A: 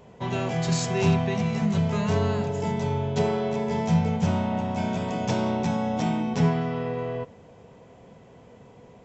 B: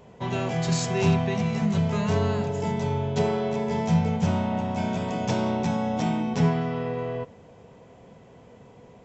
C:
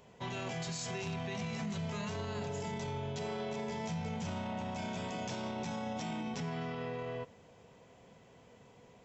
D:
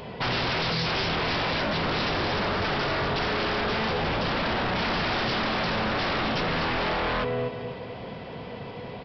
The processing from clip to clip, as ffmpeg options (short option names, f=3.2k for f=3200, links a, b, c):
-af anull
-af "tiltshelf=f=1.4k:g=-4.5,alimiter=level_in=1dB:limit=-24dB:level=0:latency=1:release=15,volume=-1dB,volume=-6dB"
-af "aecho=1:1:243|486|729|972:0.376|0.117|0.0361|0.0112,aresample=11025,aeval=exprs='0.0422*sin(PI/2*4.47*val(0)/0.0422)':c=same,aresample=44100,volume=4dB"